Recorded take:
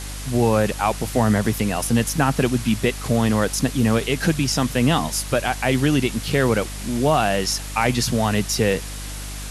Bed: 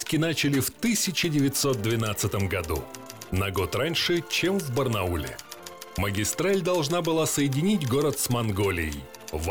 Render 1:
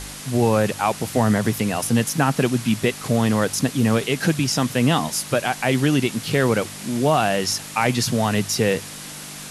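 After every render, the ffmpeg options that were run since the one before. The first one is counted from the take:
ffmpeg -i in.wav -af "bandreject=frequency=50:width_type=h:width=4,bandreject=frequency=100:width_type=h:width=4" out.wav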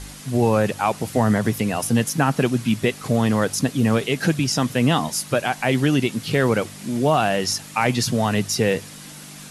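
ffmpeg -i in.wav -af "afftdn=noise_reduction=6:noise_floor=-36" out.wav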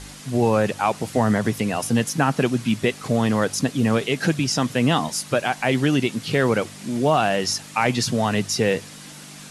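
ffmpeg -i in.wav -af "lowpass=10000,lowshelf=frequency=110:gain=-5" out.wav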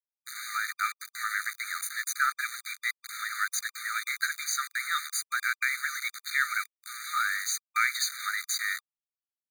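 ffmpeg -i in.wav -af "aeval=exprs='val(0)*gte(abs(val(0)),0.0501)':channel_layout=same,afftfilt=real='re*eq(mod(floor(b*sr/1024/1200),2),1)':imag='im*eq(mod(floor(b*sr/1024/1200),2),1)':win_size=1024:overlap=0.75" out.wav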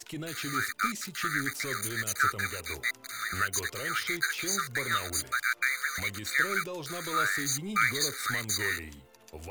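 ffmpeg -i in.wav -i bed.wav -filter_complex "[1:a]volume=-14dB[link_01];[0:a][link_01]amix=inputs=2:normalize=0" out.wav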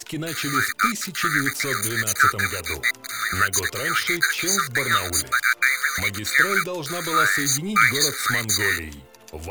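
ffmpeg -i in.wav -af "volume=9dB" out.wav

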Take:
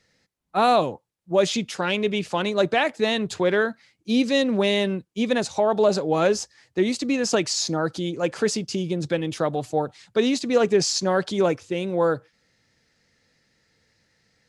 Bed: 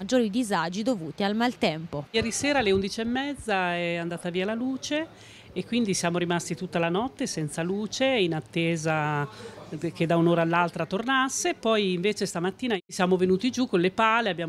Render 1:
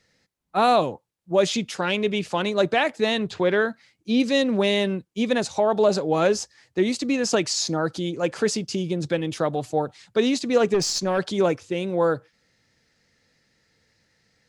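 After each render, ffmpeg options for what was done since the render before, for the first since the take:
ffmpeg -i in.wav -filter_complex "[0:a]asettb=1/sr,asplit=3[link_01][link_02][link_03];[link_01]atrim=end=3.204[link_04];[link_02]atrim=start=3.2:end=4.2,asetpts=PTS-STARTPTS,afade=type=in:duration=0.004:curve=qsin,afade=type=out:start_time=0.996:duration=0.004:curve=qsin,acrossover=split=5200[link_05][link_06];[link_06]acompressor=threshold=-56dB:ratio=4:attack=1:release=60[link_07];[link_05][link_07]amix=inputs=2:normalize=0[link_08];[link_03]atrim=start=4.196[link_09];[link_04][link_08]acrossfade=duration=0.004:curve1=hsin:curve2=qsin[link_10];[link_10][link_09]acrossfade=duration=0.004:curve1=qsin:curve2=hsin,asettb=1/sr,asplit=3[link_11][link_12][link_13];[link_11]atrim=end=10.744[link_14];[link_12]atrim=start=10.74:end=11.19,asetpts=PTS-STARTPTS,afade=type=in:duration=0.004:curve=qsin,afade=type=out:start_time=0.446:duration=0.004:curve=qsin,aeval=exprs='(tanh(5.62*val(0)+0.2)-tanh(0.2))/5.62':channel_layout=same[link_15];[link_13]atrim=start=11.186[link_16];[link_14][link_15]acrossfade=duration=0.004:curve1=hsin:curve2=qsin[link_17];[link_17][link_16]acrossfade=duration=0.004:curve1=qsin:curve2=hsin" out.wav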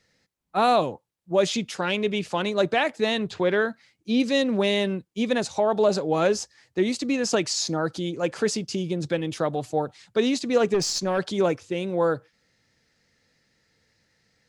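ffmpeg -i in.wav -af "volume=-1.5dB" out.wav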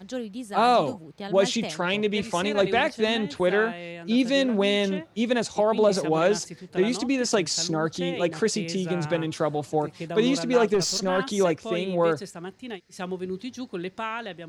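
ffmpeg -i in.wav -i bed.wav -filter_complex "[1:a]volume=-9.5dB[link_01];[0:a][link_01]amix=inputs=2:normalize=0" out.wav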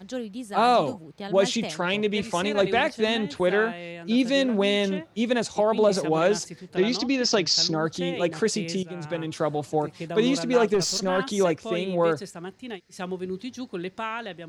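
ffmpeg -i in.wav -filter_complex "[0:a]asettb=1/sr,asplit=3[link_01][link_02][link_03];[link_01]atrim=end=6.764[link_04];[link_02]atrim=start=6.76:end=7.75,asetpts=PTS-STARTPTS,afade=type=in:duration=0.004:curve=qsin,afade=type=out:start_time=0.986:duration=0.004:curve=qsin,highshelf=frequency=7100:width_type=q:width=3:gain=-12.5[link_05];[link_03]atrim=start=7.746[link_06];[link_04][link_05]acrossfade=duration=0.004:curve1=hsin:curve2=qsin[link_07];[link_07][link_06]acrossfade=duration=0.004:curve1=qsin:curve2=hsin,asplit=2[link_08][link_09];[link_08]atrim=end=8.83,asetpts=PTS-STARTPTS,afade=type=out:start_time=8.826:duration=0.004:curve=hsin:silence=0.211349[link_10];[link_09]atrim=start=8.83,asetpts=PTS-STARTPTS,afade=type=in:duration=0.64:silence=0.211349[link_11];[link_10][link_11]concat=n=2:v=0:a=1" out.wav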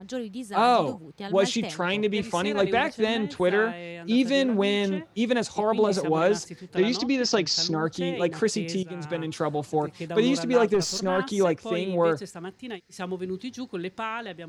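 ffmpeg -i in.wav -af "bandreject=frequency=620:width=12,adynamicequalizer=threshold=0.0141:dfrequency=2000:dqfactor=0.7:tfrequency=2000:tqfactor=0.7:attack=5:release=100:ratio=0.375:range=2:mode=cutabove:tftype=highshelf" out.wav

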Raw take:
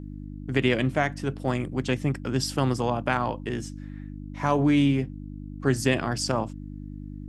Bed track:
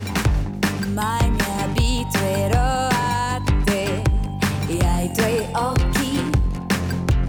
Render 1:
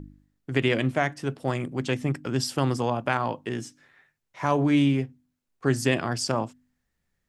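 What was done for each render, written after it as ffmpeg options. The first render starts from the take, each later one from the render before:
ffmpeg -i in.wav -af "bandreject=frequency=50:width_type=h:width=4,bandreject=frequency=100:width_type=h:width=4,bandreject=frequency=150:width_type=h:width=4,bandreject=frequency=200:width_type=h:width=4,bandreject=frequency=250:width_type=h:width=4,bandreject=frequency=300:width_type=h:width=4" out.wav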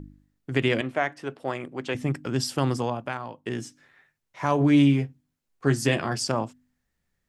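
ffmpeg -i in.wav -filter_complex "[0:a]asettb=1/sr,asplit=3[link_01][link_02][link_03];[link_01]atrim=end=0.814[link_04];[link_02]atrim=start=0.81:end=1.95,asetpts=PTS-STARTPTS,afade=type=in:duration=0.004:curve=qsin,afade=type=out:start_time=1.136:duration=0.004:curve=qsin,bass=frequency=250:gain=-12,treble=frequency=4000:gain=-8[link_05];[link_03]atrim=start=1.946[link_06];[link_04][link_05]acrossfade=duration=0.004:curve1=hsin:curve2=qsin[link_07];[link_07][link_06]acrossfade=duration=0.004:curve1=qsin:curve2=hsin,asettb=1/sr,asplit=3[link_08][link_09][link_10];[link_08]atrim=end=4.594[link_11];[link_09]atrim=start=4.59:end=6.23,asetpts=PTS-STARTPTS,afade=type=in:duration=0.004:curve=qsin,afade=type=out:start_time=1.636:duration=0.004:curve=qsin,asplit=2[link_12][link_13];[link_13]adelay=14,volume=-7dB[link_14];[link_12][link_14]amix=inputs=2:normalize=0,atrim=end_sample=72324[link_15];[link_10]atrim=start=6.226[link_16];[link_11][link_15]acrossfade=duration=0.004:curve1=hsin:curve2=qsin[link_17];[link_17][link_16]acrossfade=duration=0.004:curve1=qsin:curve2=hsin,asplit=2[link_18][link_19];[link_18]atrim=end=3.46,asetpts=PTS-STARTPTS,afade=type=out:start_time=2.78:duration=0.68:curve=qua:silence=0.281838[link_20];[link_19]atrim=start=3.46,asetpts=PTS-STARTPTS,afade=type=in:duration=0.004:curve=hsin:silence=0.281838[link_21];[link_20][link_21]concat=n=2:v=0:a=1" out.wav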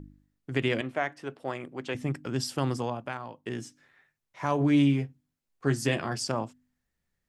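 ffmpeg -i in.wav -af "volume=-4dB" out.wav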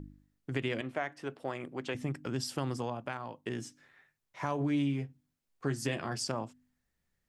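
ffmpeg -i in.wav -af "acompressor=threshold=-34dB:ratio=2" out.wav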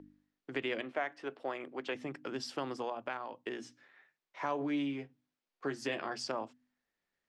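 ffmpeg -i in.wav -filter_complex "[0:a]acrossover=split=250 5500:gain=0.112 1 0.141[link_01][link_02][link_03];[link_01][link_02][link_03]amix=inputs=3:normalize=0,bandreject=frequency=60:width_type=h:width=6,bandreject=frequency=120:width_type=h:width=6,bandreject=frequency=180:width_type=h:width=6,bandreject=frequency=240:width_type=h:width=6" out.wav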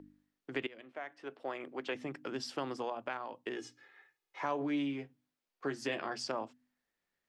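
ffmpeg -i in.wav -filter_complex "[0:a]asettb=1/sr,asplit=3[link_01][link_02][link_03];[link_01]atrim=end=3.564[link_04];[link_02]atrim=start=3.56:end=4.41,asetpts=PTS-STARTPTS,afade=type=in:duration=0.004:curve=qsin,afade=type=out:start_time=0.846:duration=0.004:curve=qsin,aecho=1:1:2.4:0.75,atrim=end_sample=37485[link_05];[link_03]atrim=start=4.406[link_06];[link_04][link_05]acrossfade=duration=0.004:curve1=hsin:curve2=qsin[link_07];[link_07][link_06]acrossfade=duration=0.004:curve1=qsin:curve2=hsin,asplit=2[link_08][link_09];[link_08]atrim=end=0.67,asetpts=PTS-STARTPTS,afade=type=out:start_time=0.666:duration=0.004:curve=hsin:silence=0.0794328[link_10];[link_09]atrim=start=0.67,asetpts=PTS-STARTPTS,afade=type=in:duration=1:silence=0.0794328[link_11];[link_10][link_11]concat=n=2:v=0:a=1" out.wav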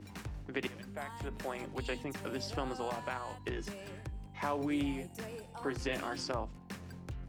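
ffmpeg -i in.wav -i bed.wav -filter_complex "[1:a]volume=-24.5dB[link_01];[0:a][link_01]amix=inputs=2:normalize=0" out.wav

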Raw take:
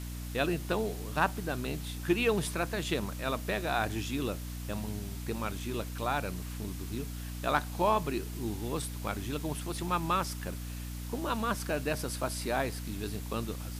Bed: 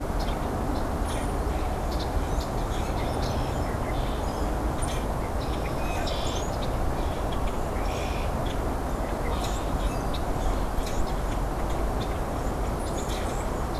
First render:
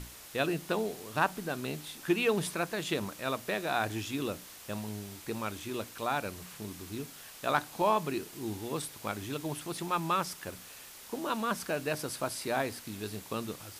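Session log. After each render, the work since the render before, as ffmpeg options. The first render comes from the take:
ffmpeg -i in.wav -af "bandreject=frequency=60:width_type=h:width=6,bandreject=frequency=120:width_type=h:width=6,bandreject=frequency=180:width_type=h:width=6,bandreject=frequency=240:width_type=h:width=6,bandreject=frequency=300:width_type=h:width=6" out.wav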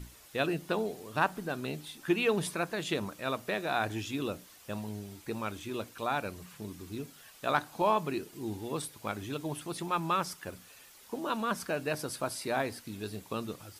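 ffmpeg -i in.wav -af "afftdn=noise_reduction=8:noise_floor=-50" out.wav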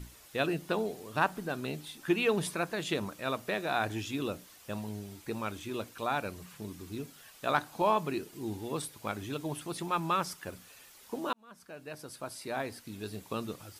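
ffmpeg -i in.wav -filter_complex "[0:a]asplit=2[link_01][link_02];[link_01]atrim=end=11.33,asetpts=PTS-STARTPTS,afade=type=out:start_time=11.326:duration=0.004:curve=hsin[link_03];[link_02]atrim=start=11.33,asetpts=PTS-STARTPTS,afade=type=in:duration=1.98[link_04];[link_03][link_04]concat=n=2:v=0:a=1" out.wav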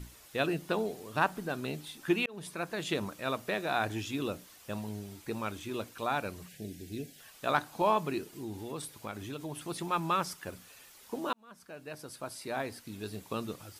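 ffmpeg -i in.wav -filter_complex "[0:a]asettb=1/sr,asplit=3[link_01][link_02][link_03];[link_01]atrim=end=6.484[link_04];[link_02]atrim=start=6.48:end=7.2,asetpts=PTS-STARTPTS,afade=type=in:duration=0.004:curve=qsin,afade=type=out:start_time=0.716:duration=0.004:curve=qsin,asuperstop=centerf=1100:order=8:qfactor=1.3[link_05];[link_03]atrim=start=7.196[link_06];[link_04][link_05]acrossfade=duration=0.004:curve1=hsin:curve2=qsin[link_07];[link_07][link_06]acrossfade=duration=0.004:curve1=qsin:curve2=hsin,asettb=1/sr,asplit=3[link_08][link_09][link_10];[link_08]atrim=end=8.364[link_11];[link_09]atrim=start=8.36:end=9.64,asetpts=PTS-STARTPTS,afade=type=in:duration=0.004:curve=qsin,afade=type=out:start_time=1.276:duration=0.004:curve=qsin,acompressor=threshold=-38dB:ratio=2:attack=3.2:release=140:knee=1:detection=peak[link_12];[link_10]atrim=start=9.636[link_13];[link_11][link_12]acrossfade=duration=0.004:curve1=hsin:curve2=qsin[link_14];[link_14][link_13]acrossfade=duration=0.004:curve1=qsin:curve2=hsin,asplit=2[link_15][link_16];[link_15]atrim=end=2.26,asetpts=PTS-STARTPTS,afade=type=out:start_time=2.256:duration=0.004:curve=hsin[link_17];[link_16]atrim=start=2.26,asetpts=PTS-STARTPTS,afade=type=in:duration=0.77:curve=qsin[link_18];[link_17][link_18]concat=n=2:v=0:a=1" out.wav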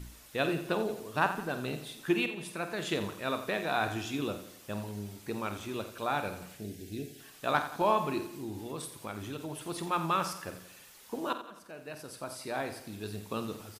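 ffmpeg -i in.wav -filter_complex "[0:a]asplit=2[link_01][link_02];[link_02]adelay=49,volume=-11dB[link_03];[link_01][link_03]amix=inputs=2:normalize=0,asplit=2[link_04][link_05];[link_05]aecho=0:1:87|174|261|348|435:0.251|0.121|0.0579|0.0278|0.0133[link_06];[link_04][link_06]amix=inputs=2:normalize=0" out.wav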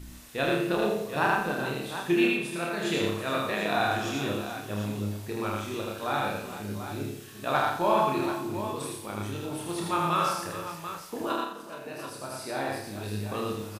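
ffmpeg -i in.wav -filter_complex "[0:a]asplit=2[link_01][link_02];[link_02]adelay=29,volume=-3dB[link_03];[link_01][link_03]amix=inputs=2:normalize=0,asplit=2[link_04][link_05];[link_05]aecho=0:1:78|116|424|738:0.562|0.473|0.237|0.316[link_06];[link_04][link_06]amix=inputs=2:normalize=0" out.wav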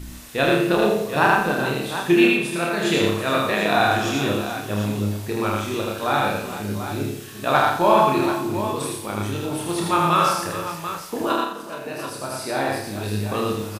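ffmpeg -i in.wav -af "volume=8dB" out.wav

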